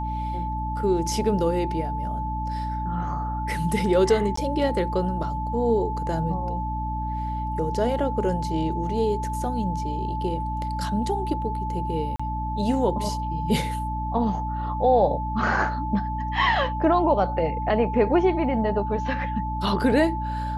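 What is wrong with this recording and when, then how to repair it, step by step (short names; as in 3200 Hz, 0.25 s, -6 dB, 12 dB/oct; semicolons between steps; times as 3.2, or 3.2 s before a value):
hum 60 Hz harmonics 5 -30 dBFS
tone 870 Hz -29 dBFS
4.36–4.37 gap 14 ms
12.16–12.2 gap 35 ms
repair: de-hum 60 Hz, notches 5; notch 870 Hz, Q 30; interpolate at 4.36, 14 ms; interpolate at 12.16, 35 ms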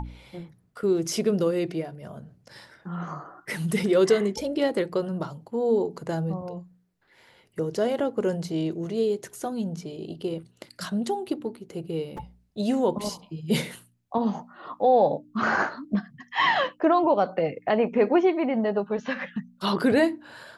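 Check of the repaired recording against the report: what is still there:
none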